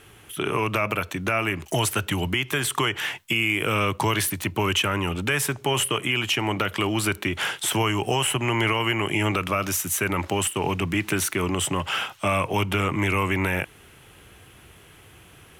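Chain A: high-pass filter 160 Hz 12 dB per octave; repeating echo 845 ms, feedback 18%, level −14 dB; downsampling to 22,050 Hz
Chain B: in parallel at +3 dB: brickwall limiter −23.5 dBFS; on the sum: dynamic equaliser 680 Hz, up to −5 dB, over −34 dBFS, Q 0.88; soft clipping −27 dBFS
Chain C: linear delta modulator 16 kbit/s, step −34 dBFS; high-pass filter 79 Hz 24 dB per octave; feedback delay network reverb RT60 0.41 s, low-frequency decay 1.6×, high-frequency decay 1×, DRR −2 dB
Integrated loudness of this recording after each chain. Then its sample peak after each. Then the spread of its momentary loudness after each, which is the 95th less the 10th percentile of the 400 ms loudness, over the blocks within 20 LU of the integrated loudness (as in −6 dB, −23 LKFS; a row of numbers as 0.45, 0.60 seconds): −24.5, −29.0, −22.0 LKFS; −9.5, −27.0, −6.5 dBFS; 5, 10, 15 LU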